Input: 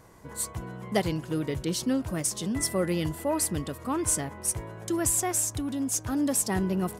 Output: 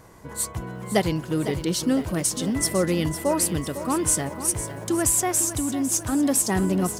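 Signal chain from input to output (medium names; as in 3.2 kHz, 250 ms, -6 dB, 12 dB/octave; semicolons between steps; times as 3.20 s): bit-crushed delay 504 ms, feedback 55%, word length 9-bit, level -11.5 dB; trim +4.5 dB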